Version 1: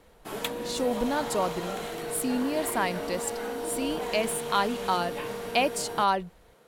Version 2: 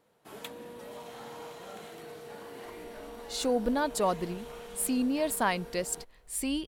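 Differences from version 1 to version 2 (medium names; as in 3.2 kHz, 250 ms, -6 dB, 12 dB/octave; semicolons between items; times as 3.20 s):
speech: entry +2.65 s; background -10.5 dB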